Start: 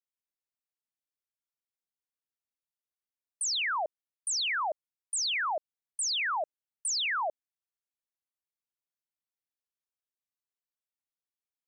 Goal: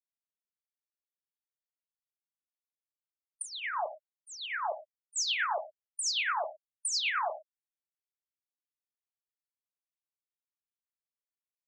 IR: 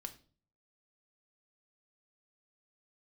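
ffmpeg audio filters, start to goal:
-filter_complex "[0:a]asettb=1/sr,asplit=3[s0][s1][s2];[s0]atrim=end=3.424[s3];[s1]atrim=start=3.42:end=5.16,asetpts=PTS-STARTPTS,afade=t=in:d=0.004:c=qsin,afade=t=out:st=1.736:d=0.004:c=qsin,lowpass=f=1300:p=1[s4];[s2]atrim=start=5.156[s5];[s3][s4]acrossfade=d=0.004:c1=hsin:c2=qsin[s6];[s6][s5]acrossfade=d=0.004:c1=qsin:c2=hsin[s7];[1:a]atrim=start_sample=2205,atrim=end_sample=3969,asetrate=31311,aresample=44100[s8];[s7][s8]afir=irnorm=-1:irlink=0,afftfilt=real='re*gte(hypot(re,im),0.0112)':imag='im*gte(hypot(re,im),0.0112)':win_size=1024:overlap=0.75,acrossover=split=820[s9][s10];[s9]aeval=exprs='val(0)*(1-0.5/2+0.5/2*cos(2*PI*9.1*n/s))':c=same[s11];[s10]aeval=exprs='val(0)*(1-0.5/2-0.5/2*cos(2*PI*9.1*n/s))':c=same[s12];[s11][s12]amix=inputs=2:normalize=0,equalizer=f=94:t=o:w=1.9:g=12,volume=1.5"

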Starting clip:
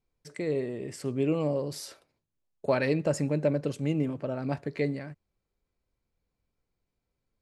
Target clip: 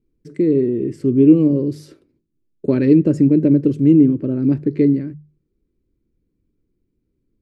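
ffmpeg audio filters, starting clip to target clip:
-filter_complex "[0:a]lowshelf=f=490:t=q:w=3:g=13.5,bandreject=f=50:t=h:w=6,bandreject=f=100:t=h:w=6,bandreject=f=150:t=h:w=6,asplit=2[s0][s1];[s1]adynamicsmooth=sensitivity=2:basefreq=4900,volume=0.891[s2];[s0][s2]amix=inputs=2:normalize=0,volume=0.447"

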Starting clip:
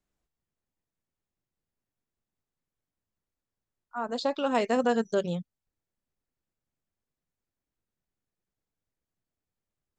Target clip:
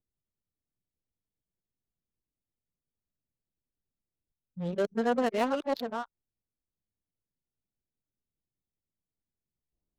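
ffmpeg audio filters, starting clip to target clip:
-af "areverse,adynamicsmooth=sensitivity=7:basefreq=630,volume=0.794"

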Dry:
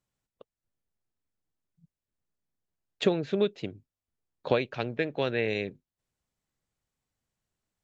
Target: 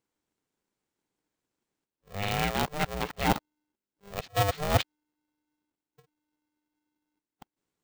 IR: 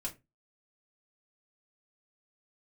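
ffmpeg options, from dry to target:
-af "areverse,aeval=exprs='val(0)*sgn(sin(2*PI*300*n/s))':c=same"

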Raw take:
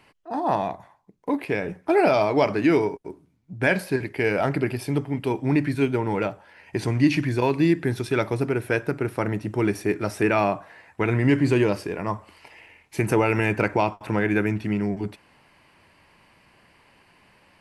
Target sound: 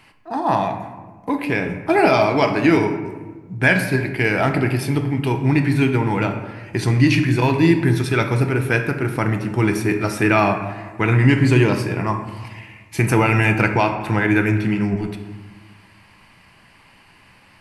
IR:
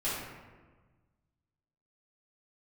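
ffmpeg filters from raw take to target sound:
-filter_complex "[0:a]equalizer=f=470:w=1.1:g=-7.5,asplit=2[s0][s1];[1:a]atrim=start_sample=2205[s2];[s1][s2]afir=irnorm=-1:irlink=0,volume=0.282[s3];[s0][s3]amix=inputs=2:normalize=0,volume=1.88"

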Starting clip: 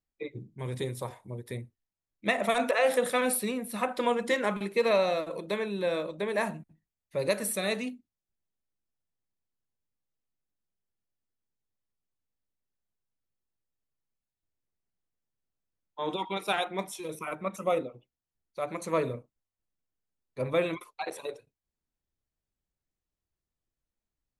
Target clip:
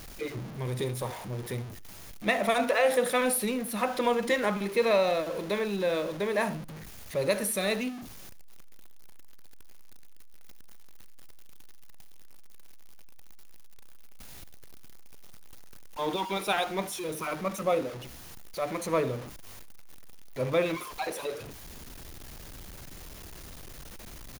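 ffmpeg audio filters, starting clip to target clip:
-af "aeval=exprs='val(0)+0.5*0.015*sgn(val(0))':c=same,bandreject=f=7800:w=8.9,aecho=1:1:73:0.106"

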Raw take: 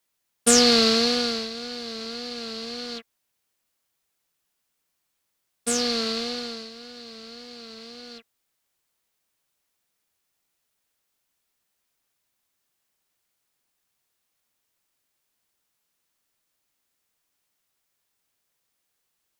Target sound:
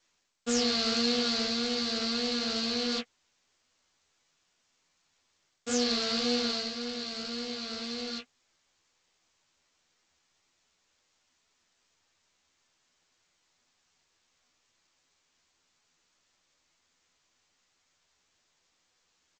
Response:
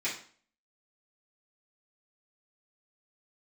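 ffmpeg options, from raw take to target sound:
-filter_complex "[0:a]areverse,acompressor=threshold=0.0251:ratio=6,areverse,flanger=delay=8:depth=8.1:regen=-17:speed=1.9:shape=sinusoidal,asplit=2[s0][s1];[s1]adelay=12,volume=0.631[s2];[s0][s2]amix=inputs=2:normalize=0,volume=2.37" -ar 16000 -c:a g722

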